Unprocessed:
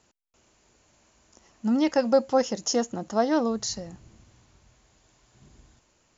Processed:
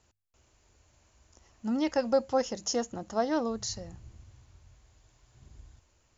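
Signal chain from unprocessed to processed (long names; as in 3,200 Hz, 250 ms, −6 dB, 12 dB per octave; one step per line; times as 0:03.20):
low shelf with overshoot 130 Hz +9 dB, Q 1.5
mains-hum notches 50/100/150/200 Hz
level −4.5 dB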